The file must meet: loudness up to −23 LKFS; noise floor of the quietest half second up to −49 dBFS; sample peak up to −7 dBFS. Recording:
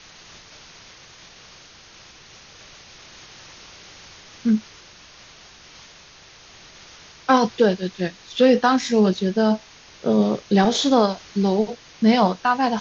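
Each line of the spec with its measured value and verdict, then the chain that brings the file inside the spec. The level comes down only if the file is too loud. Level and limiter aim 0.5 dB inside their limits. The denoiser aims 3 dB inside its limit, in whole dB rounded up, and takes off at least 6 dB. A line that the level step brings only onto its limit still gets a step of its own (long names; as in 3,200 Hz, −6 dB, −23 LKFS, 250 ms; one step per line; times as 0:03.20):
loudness −20.0 LKFS: out of spec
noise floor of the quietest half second −47 dBFS: out of spec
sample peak −4.0 dBFS: out of spec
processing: level −3.5 dB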